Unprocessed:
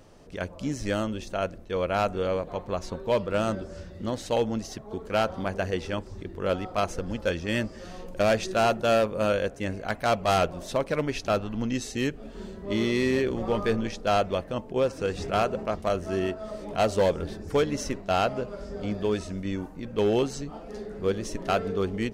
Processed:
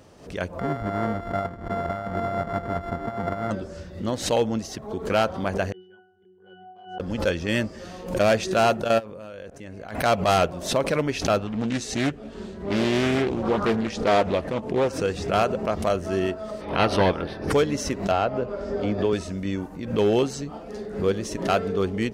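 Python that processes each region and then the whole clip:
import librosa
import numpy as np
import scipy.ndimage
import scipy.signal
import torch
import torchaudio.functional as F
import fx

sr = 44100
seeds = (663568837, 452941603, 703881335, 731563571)

y = fx.chain(x, sr, fx.sample_sort(block=64),
    fx.over_compress(threshold_db=-28.0, ratio=-0.5),
    fx.savgol(points=41), at=(0.59, 3.51))
y = fx.chain(y, sr, fx.highpass(hz=450.0, slope=12),
    fx.octave_resonator(note='F#', decay_s=0.67), at=(5.72, 7.0))
y = fx.chain(y, sr, fx.high_shelf(hz=3800.0, db=-3.0),
    fx.level_steps(step_db=21), at=(8.84, 9.95))
y = fx.chain(y, sr, fx.lowpass(hz=11000.0, slope=12),
    fx.doubler(ms=14.0, db=-13.5),
    fx.doppler_dist(depth_ms=0.63), at=(11.47, 14.9))
y = fx.spec_clip(y, sr, under_db=14, at=(16.6, 17.5), fade=0.02)
y = fx.moving_average(y, sr, points=6, at=(16.6, 17.5), fade=0.02)
y = fx.chain(y, sr, fx.lowpass(hz=1800.0, slope=6),
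    fx.peak_eq(hz=170.0, db=-11.5, octaves=0.35),
    fx.band_squash(depth_pct=70), at=(18.11, 19.13))
y = scipy.signal.sosfilt(scipy.signal.butter(2, 54.0, 'highpass', fs=sr, output='sos'), y)
y = fx.pre_swell(y, sr, db_per_s=110.0)
y = F.gain(torch.from_numpy(y), 3.0).numpy()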